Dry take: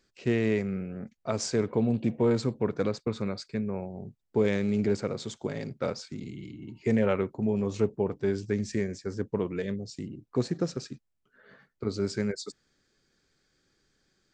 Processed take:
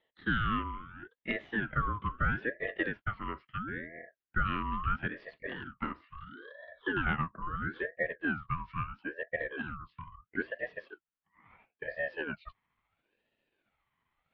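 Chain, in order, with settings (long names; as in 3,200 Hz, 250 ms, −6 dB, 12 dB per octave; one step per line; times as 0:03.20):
pitch glide at a constant tempo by −6.5 semitones starting unshifted
single-sideband voice off tune +340 Hz 200–2,300 Hz
ring modulator whose carrier an LFO sweeps 830 Hz, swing 45%, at 0.75 Hz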